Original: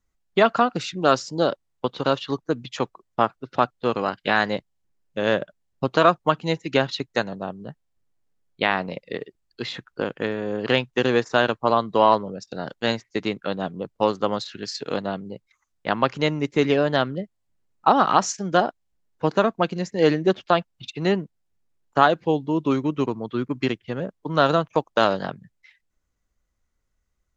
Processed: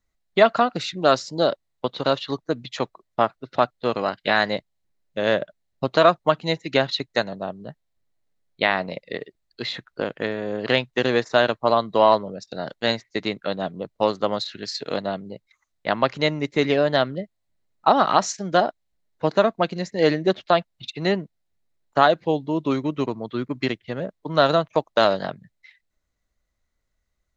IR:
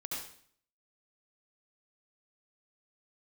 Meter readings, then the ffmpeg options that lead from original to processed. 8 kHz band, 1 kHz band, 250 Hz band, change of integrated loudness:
n/a, 0.0 dB, -1.5 dB, +0.5 dB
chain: -af "equalizer=f=630:t=o:w=0.33:g=6,equalizer=f=2k:t=o:w=0.33:g=5,equalizer=f=4k:t=o:w=0.33:g=7,volume=-1.5dB"

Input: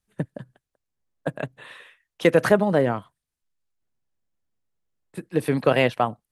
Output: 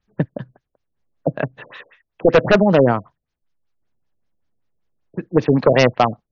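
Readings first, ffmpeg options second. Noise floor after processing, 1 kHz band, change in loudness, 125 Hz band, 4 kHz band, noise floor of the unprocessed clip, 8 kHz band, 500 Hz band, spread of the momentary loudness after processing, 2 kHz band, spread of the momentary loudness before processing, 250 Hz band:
-79 dBFS, +6.0 dB, +5.5 dB, +7.0 dB, +5.5 dB, -85 dBFS, n/a, +6.0 dB, 14 LU, +4.0 dB, 16 LU, +6.5 dB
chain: -af "aeval=exprs='0.266*(abs(mod(val(0)/0.266+3,4)-2)-1)':c=same,afftfilt=real='re*lt(b*sr/1024,660*pow(7000/660,0.5+0.5*sin(2*PI*5.2*pts/sr)))':imag='im*lt(b*sr/1024,660*pow(7000/660,0.5+0.5*sin(2*PI*5.2*pts/sr)))':win_size=1024:overlap=0.75,volume=8dB"

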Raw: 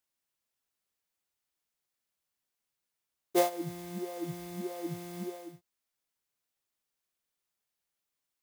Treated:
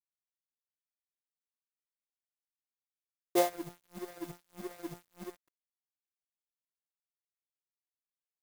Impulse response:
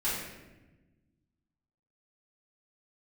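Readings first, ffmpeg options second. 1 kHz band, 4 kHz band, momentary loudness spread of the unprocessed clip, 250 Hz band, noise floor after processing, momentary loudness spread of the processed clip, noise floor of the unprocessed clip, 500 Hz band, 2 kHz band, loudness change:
-1.5 dB, -1.5 dB, 12 LU, -3.5 dB, under -85 dBFS, 18 LU, under -85 dBFS, -2.0 dB, -1.0 dB, -1.5 dB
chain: -af "highpass=160,agate=range=-33dB:threshold=-39dB:ratio=3:detection=peak,aeval=exprs='sgn(val(0))*max(abs(val(0))-0.00794,0)':c=same"

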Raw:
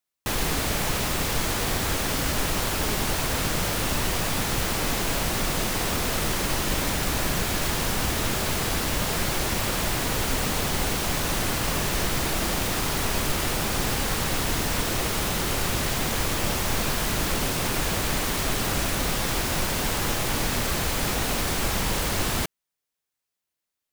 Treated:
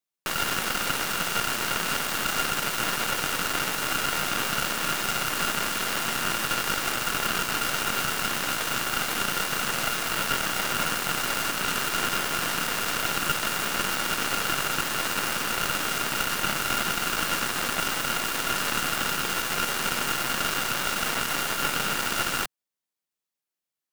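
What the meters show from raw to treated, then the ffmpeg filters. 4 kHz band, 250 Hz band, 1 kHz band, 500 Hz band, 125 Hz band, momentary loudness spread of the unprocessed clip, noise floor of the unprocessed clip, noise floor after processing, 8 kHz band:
+0.5 dB, -6.0 dB, +2.0 dB, -4.5 dB, -11.0 dB, 0 LU, -85 dBFS, under -85 dBFS, -1.5 dB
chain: -af "aeval=exprs='val(0)*sin(2*PI*1400*n/s)':c=same,aeval=exprs='0.251*(cos(1*acos(clip(val(0)/0.251,-1,1)))-cos(1*PI/2))+0.112*(cos(4*acos(clip(val(0)/0.251,-1,1)))-cos(4*PI/2))':c=same,lowshelf=f=120:t=q:w=1.5:g=-6,volume=-1.5dB"

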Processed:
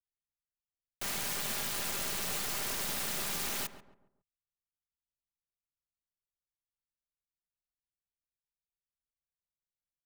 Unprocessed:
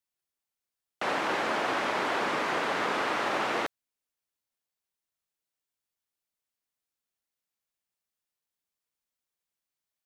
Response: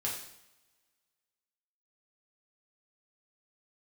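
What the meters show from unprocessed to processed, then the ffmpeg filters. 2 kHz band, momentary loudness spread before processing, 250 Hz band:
-10.5 dB, 3 LU, -10.0 dB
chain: -filter_complex "[0:a]afftfilt=real='re*(1-between(b*sr/4096,1500,5100))':imag='im*(1-between(b*sr/4096,1500,5100))':win_size=4096:overlap=0.75,acrossover=split=140[a][b];[b]acrusher=bits=4:dc=4:mix=0:aa=0.000001[c];[a][c]amix=inputs=2:normalize=0,aeval=exprs='(mod(47.3*val(0)+1,2)-1)/47.3':c=same,highshelf=f=10k:g=9.5,aecho=1:1:5:0.38,asplit=2[d][e];[e]adelay=138,lowpass=f=1.2k:p=1,volume=-10.5dB,asplit=2[f][g];[g]adelay=138,lowpass=f=1.2k:p=1,volume=0.41,asplit=2[h][i];[i]adelay=138,lowpass=f=1.2k:p=1,volume=0.41,asplit=2[j][k];[k]adelay=138,lowpass=f=1.2k:p=1,volume=0.41[l];[d][f][h][j][l]amix=inputs=5:normalize=0,volume=2.5dB"

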